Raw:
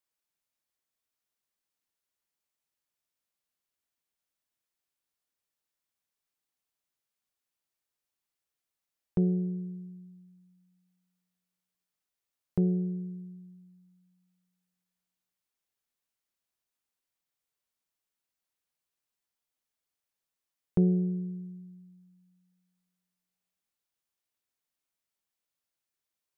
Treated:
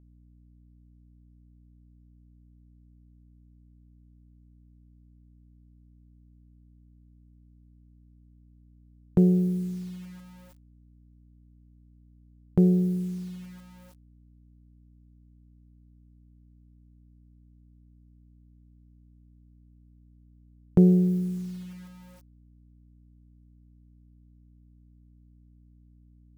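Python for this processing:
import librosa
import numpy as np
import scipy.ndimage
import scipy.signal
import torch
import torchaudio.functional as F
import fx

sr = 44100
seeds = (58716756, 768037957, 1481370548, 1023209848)

y = fx.quant_dither(x, sr, seeds[0], bits=10, dither='none')
y = fx.add_hum(y, sr, base_hz=60, snr_db=23)
y = y * librosa.db_to_amplitude(6.5)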